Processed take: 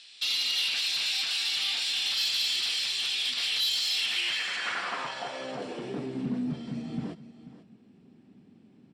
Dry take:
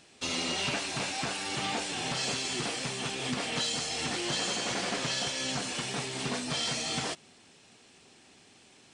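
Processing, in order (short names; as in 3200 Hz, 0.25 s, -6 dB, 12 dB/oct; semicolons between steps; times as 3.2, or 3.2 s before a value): bell 620 Hz -6 dB 2.4 oct; notch 6400 Hz, Q 7.2; limiter -27 dBFS, peak gain reduction 6.5 dB; band-pass sweep 3800 Hz -> 210 Hz, 3.93–6.34; sine folder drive 18 dB, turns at -15 dBFS; echo 0.488 s -15.5 dB; gain -7.5 dB; AC-3 320 kbps 44100 Hz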